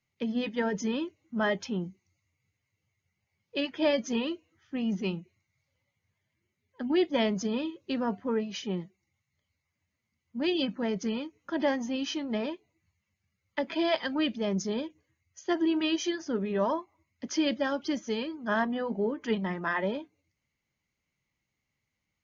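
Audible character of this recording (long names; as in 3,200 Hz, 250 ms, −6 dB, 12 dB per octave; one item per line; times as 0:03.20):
background noise floor −84 dBFS
spectral slope −3.5 dB per octave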